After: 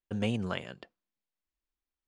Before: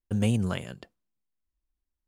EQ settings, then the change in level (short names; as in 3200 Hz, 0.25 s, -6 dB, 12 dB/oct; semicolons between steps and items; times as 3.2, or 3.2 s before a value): LPF 4400 Hz 12 dB/oct; low shelf 200 Hz -12 dB; 0.0 dB